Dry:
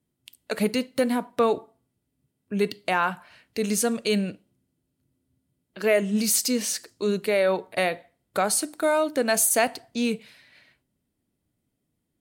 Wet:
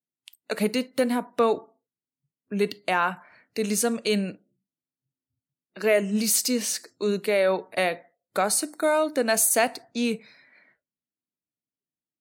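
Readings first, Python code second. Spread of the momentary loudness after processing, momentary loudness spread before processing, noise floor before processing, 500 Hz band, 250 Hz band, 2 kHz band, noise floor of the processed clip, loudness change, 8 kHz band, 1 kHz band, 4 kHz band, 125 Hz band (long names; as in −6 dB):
10 LU, 10 LU, −79 dBFS, 0.0 dB, −1.0 dB, 0.0 dB, below −85 dBFS, 0.0 dB, 0.0 dB, 0.0 dB, 0.0 dB, −1.5 dB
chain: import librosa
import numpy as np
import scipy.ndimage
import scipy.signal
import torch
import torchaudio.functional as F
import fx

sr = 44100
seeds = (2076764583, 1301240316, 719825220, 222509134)

y = fx.noise_reduce_blind(x, sr, reduce_db=21)
y = scipy.signal.sosfilt(scipy.signal.butter(2, 150.0, 'highpass', fs=sr, output='sos'), y)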